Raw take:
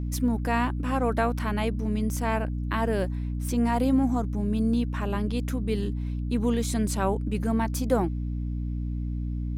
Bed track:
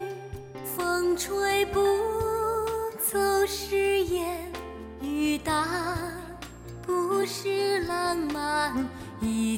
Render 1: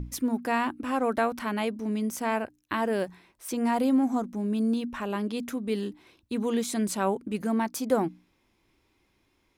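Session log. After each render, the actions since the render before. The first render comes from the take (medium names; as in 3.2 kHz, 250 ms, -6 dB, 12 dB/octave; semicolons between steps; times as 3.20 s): hum notches 60/120/180/240/300 Hz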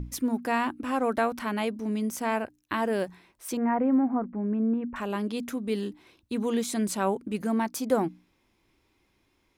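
3.57–4.96 s: steep low-pass 2.1 kHz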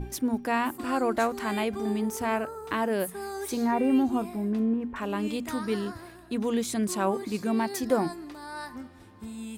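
add bed track -12 dB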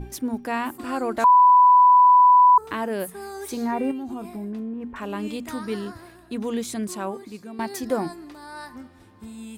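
1.24–2.58 s: bleep 993 Hz -10 dBFS; 3.91–4.88 s: compression 12:1, threshold -28 dBFS; 6.68–7.59 s: fade out, to -14 dB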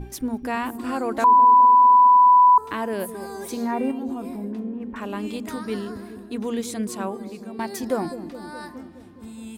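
feedback echo behind a low-pass 209 ms, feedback 66%, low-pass 450 Hz, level -8 dB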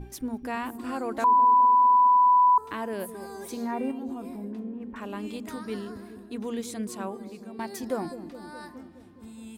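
trim -5.5 dB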